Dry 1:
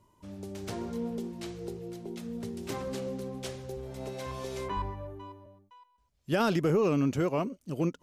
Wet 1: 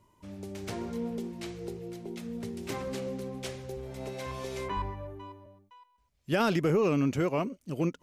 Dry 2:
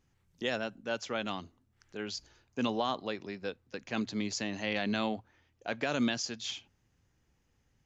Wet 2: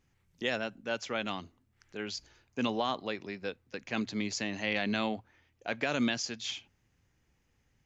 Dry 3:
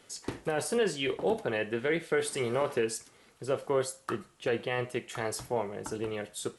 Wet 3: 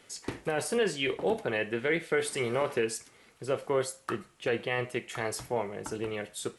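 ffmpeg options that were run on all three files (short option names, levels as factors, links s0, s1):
-af "equalizer=f=2200:w=2.1:g=4"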